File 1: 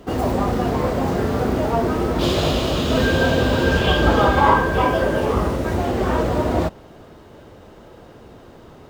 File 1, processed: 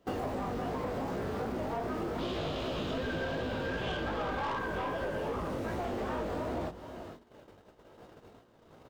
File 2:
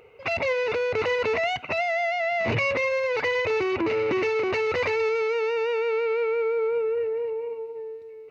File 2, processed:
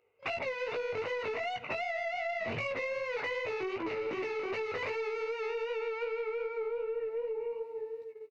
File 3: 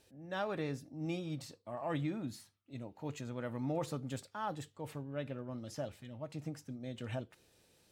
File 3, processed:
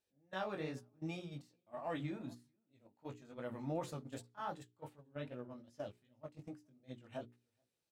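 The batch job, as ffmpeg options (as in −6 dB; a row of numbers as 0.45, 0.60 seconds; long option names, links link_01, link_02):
-filter_complex "[0:a]lowshelf=frequency=100:gain=-6.5,asplit=2[link_01][link_02];[link_02]adelay=431.5,volume=-22dB,highshelf=frequency=4000:gain=-9.71[link_03];[link_01][link_03]amix=inputs=2:normalize=0,flanger=delay=16:depth=5.3:speed=2.6,agate=range=-17dB:threshold=-45dB:ratio=16:detection=peak,bandreject=frequency=60:width_type=h:width=6,bandreject=frequency=120:width_type=h:width=6,bandreject=frequency=180:width_type=h:width=6,bandreject=frequency=240:width_type=h:width=6,bandreject=frequency=300:width_type=h:width=6,bandreject=frequency=360:width_type=h:width=6,bandreject=frequency=420:width_type=h:width=6,acrossover=split=3900[link_04][link_05];[link_05]acompressor=threshold=-47dB:ratio=4:attack=1:release=60[link_06];[link_04][link_06]amix=inputs=2:normalize=0,aeval=exprs='(tanh(7.94*val(0)+0.15)-tanh(0.15))/7.94':channel_layout=same,acompressor=threshold=-32dB:ratio=10"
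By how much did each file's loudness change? −16.0, −10.5, −5.0 LU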